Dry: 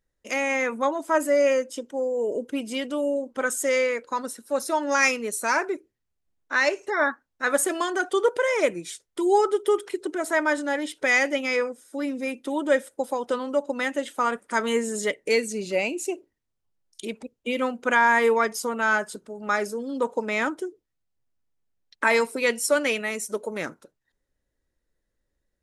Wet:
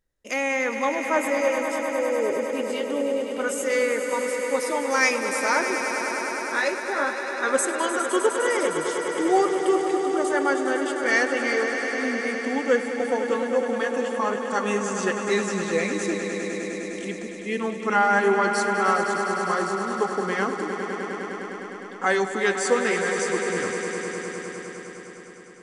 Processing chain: pitch bend over the whole clip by -3.5 st starting unshifted; on a send: echo with a slow build-up 102 ms, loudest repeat 5, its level -10.5 dB

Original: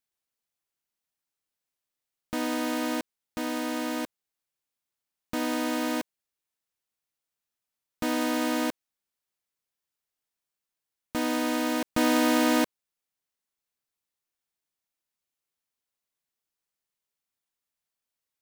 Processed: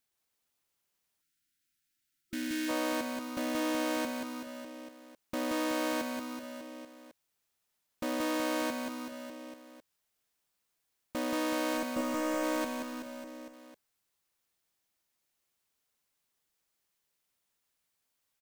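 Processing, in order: 11.77–12.44 s: dead-time distortion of 0.14 ms; peak limiter -22 dBFS, peak gain reduction 7 dB; hard clipper -36.5 dBFS, distortion -6 dB; reverse bouncing-ball echo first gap 180 ms, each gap 1.1×, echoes 5; 1.21–2.69 s: time-frequency box 360–1300 Hz -19 dB; trim +4.5 dB

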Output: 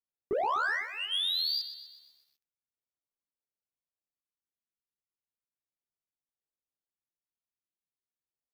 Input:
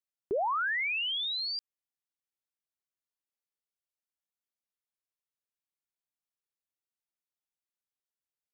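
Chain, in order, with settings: band-stop 3 kHz, Q 13; on a send at -20 dB: reverberation RT60 0.55 s, pre-delay 57 ms; on the sum: LFO notch square 0.36 Hz 610–2300 Hz; chorus 0.35 Hz, delay 15.5 ms, depth 7.6 ms; dynamic bell 4 kHz, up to +6 dB, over -50 dBFS, Q 1; level-controlled noise filter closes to 810 Hz, open at -29.5 dBFS; peak limiter -29 dBFS, peak gain reduction 4.5 dB; peaking EQ 5.6 kHz -3.5 dB 1.3 oct; waveshaping leveller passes 1; bit-crushed delay 125 ms, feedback 55%, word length 11-bit, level -12 dB; trim +4.5 dB

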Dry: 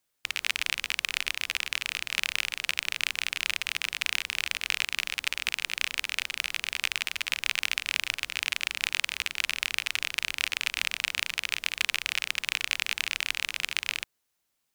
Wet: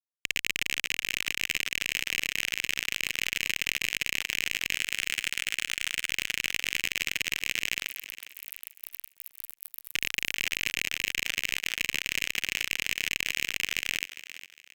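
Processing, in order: reverb removal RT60 0.75 s; 4.75–6.09 s: treble shelf 4.4 kHz +10.5 dB; 7.88–9.93 s: spectral selection erased 450–11000 Hz; peak limiter -10 dBFS, peak gain reduction 10.5 dB; fuzz box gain 32 dB, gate -34 dBFS; on a send: thinning echo 406 ms, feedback 32%, high-pass 240 Hz, level -13 dB; on the sum: trim -1.5 dB

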